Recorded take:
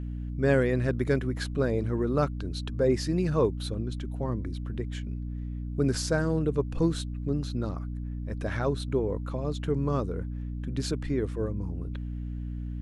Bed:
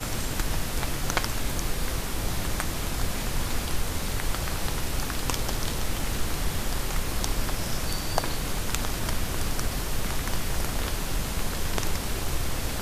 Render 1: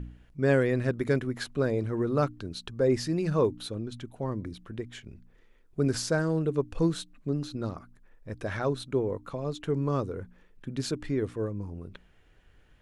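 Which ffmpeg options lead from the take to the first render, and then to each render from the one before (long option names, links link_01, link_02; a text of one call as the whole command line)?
ffmpeg -i in.wav -af "bandreject=frequency=60:width_type=h:width=4,bandreject=frequency=120:width_type=h:width=4,bandreject=frequency=180:width_type=h:width=4,bandreject=frequency=240:width_type=h:width=4,bandreject=frequency=300:width_type=h:width=4" out.wav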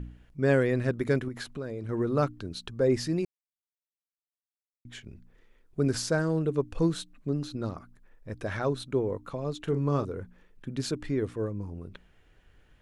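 ffmpeg -i in.wav -filter_complex "[0:a]asettb=1/sr,asplit=3[link_01][link_02][link_03];[link_01]atrim=end=1.284[link_04];[link_02]atrim=start=1.28:end=1.89,asetpts=PTS-STARTPTS,afade=type=in:duration=0.004:curve=qsin,afade=type=out:start_time=0.606:duration=0.004:curve=qsin,acompressor=threshold=-34dB:ratio=3:attack=3.2:release=140:knee=1:detection=peak[link_05];[link_03]atrim=start=1.886[link_06];[link_04][link_05]acrossfade=duration=0.004:curve1=hsin:curve2=qsin[link_07];[link_07][link_06]acrossfade=duration=0.004:curve1=qsin:curve2=hsin,asettb=1/sr,asplit=3[link_08][link_09][link_10];[link_08]atrim=end=9.584[link_11];[link_09]atrim=start=9.58:end=10.05,asetpts=PTS-STARTPTS,afade=type=in:duration=0.004:curve=qsin,afade=type=out:start_time=0.466:duration=0.004:curve=qsin,asplit=2[link_12][link_13];[link_13]adelay=42,volume=-10dB[link_14];[link_12][link_14]amix=inputs=2:normalize=0,atrim=end_sample=20727[link_15];[link_10]atrim=start=10.046[link_16];[link_11][link_15]acrossfade=duration=0.004:curve1=hsin:curve2=qsin[link_17];[link_17][link_16]acrossfade=duration=0.004:curve1=qsin:curve2=hsin,asplit=3[link_18][link_19][link_20];[link_18]atrim=end=3.25,asetpts=PTS-STARTPTS,afade=type=out:start_time=3.246:duration=0.004:curve=hsin[link_21];[link_19]atrim=start=3.25:end=4.85,asetpts=PTS-STARTPTS,volume=0[link_22];[link_20]atrim=start=4.85,asetpts=PTS-STARTPTS,afade=type=in:duration=0.004:curve=hsin[link_23];[link_21][link_22][link_23]concat=n=3:v=0:a=1" out.wav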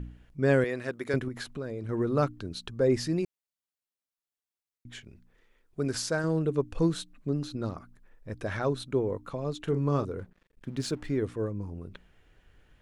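ffmpeg -i in.wav -filter_complex "[0:a]asettb=1/sr,asplit=3[link_01][link_02][link_03];[link_01]atrim=end=0.644[link_04];[link_02]atrim=start=0.64:end=1.14,asetpts=PTS-STARTPTS,afade=type=in:duration=0.004:curve=qsin,afade=type=out:start_time=0.496:duration=0.004:curve=qsin,highpass=frequency=610:poles=1[link_05];[link_03]atrim=start=1.136[link_06];[link_04][link_05]acrossfade=duration=0.004:curve1=hsin:curve2=qsin[link_07];[link_07][link_06]acrossfade=duration=0.004:curve1=qsin:curve2=hsin,asettb=1/sr,asplit=3[link_08][link_09][link_10];[link_08]atrim=end=5.044[link_11];[link_09]atrim=start=5.04:end=6.24,asetpts=PTS-STARTPTS,afade=type=in:duration=0.004:curve=qsin,afade=type=out:start_time=1.196:duration=0.004:curve=qsin,lowshelf=frequency=430:gain=-6[link_12];[link_10]atrim=start=6.236[link_13];[link_11][link_12]acrossfade=duration=0.004:curve1=hsin:curve2=qsin[link_14];[link_14][link_13]acrossfade=duration=0.004:curve1=qsin:curve2=hsin,asplit=3[link_15][link_16][link_17];[link_15]afade=type=out:start_time=10.18:duration=0.02[link_18];[link_16]aeval=exprs='sgn(val(0))*max(abs(val(0))-0.00158,0)':channel_layout=same,afade=type=in:start_time=10.18:duration=0.02,afade=type=out:start_time=11.17:duration=0.02[link_19];[link_17]afade=type=in:start_time=11.17:duration=0.02[link_20];[link_18][link_19][link_20]amix=inputs=3:normalize=0" out.wav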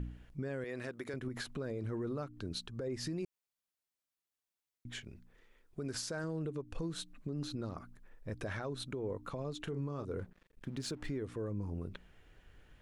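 ffmpeg -i in.wav -af "acompressor=threshold=-30dB:ratio=12,alimiter=level_in=6.5dB:limit=-24dB:level=0:latency=1:release=129,volume=-6.5dB" out.wav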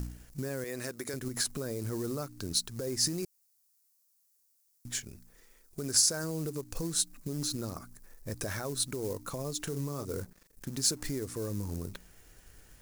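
ffmpeg -i in.wav -filter_complex "[0:a]asplit=2[link_01][link_02];[link_02]acrusher=bits=3:mode=log:mix=0:aa=0.000001,volume=-8dB[link_03];[link_01][link_03]amix=inputs=2:normalize=0,aexciter=amount=7.7:drive=2.3:freq=4600" out.wav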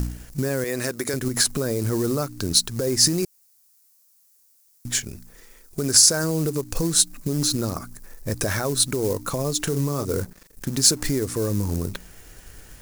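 ffmpeg -i in.wav -af "volume=11.5dB,alimiter=limit=-2dB:level=0:latency=1" out.wav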